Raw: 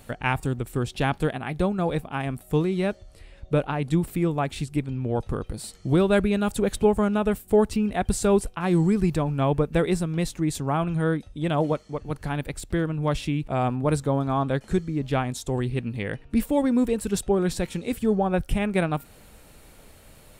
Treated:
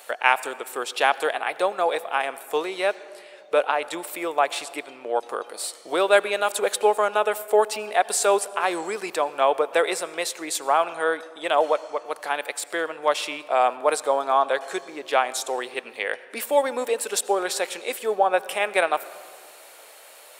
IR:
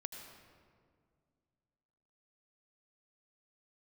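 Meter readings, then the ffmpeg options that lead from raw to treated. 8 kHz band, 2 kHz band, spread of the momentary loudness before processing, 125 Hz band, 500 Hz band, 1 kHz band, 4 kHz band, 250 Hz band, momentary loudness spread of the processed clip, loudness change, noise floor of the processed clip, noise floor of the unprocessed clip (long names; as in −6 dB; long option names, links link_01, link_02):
+7.5 dB, +7.5 dB, 8 LU, below −30 dB, +2.5 dB, +7.5 dB, +7.5 dB, −13.5 dB, 10 LU, +1.0 dB, −47 dBFS, −51 dBFS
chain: -filter_complex "[0:a]highpass=frequency=520:width=0.5412,highpass=frequency=520:width=1.3066,asplit=2[link_01][link_02];[1:a]atrim=start_sample=2205[link_03];[link_02][link_03]afir=irnorm=-1:irlink=0,volume=-8dB[link_04];[link_01][link_04]amix=inputs=2:normalize=0,volume=5.5dB"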